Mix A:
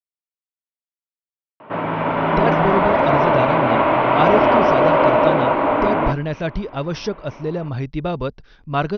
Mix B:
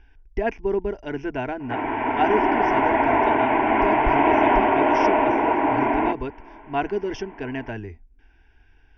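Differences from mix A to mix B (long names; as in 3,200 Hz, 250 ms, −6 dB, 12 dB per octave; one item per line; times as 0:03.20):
speech: entry −2.00 s
master: add phaser with its sweep stopped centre 820 Hz, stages 8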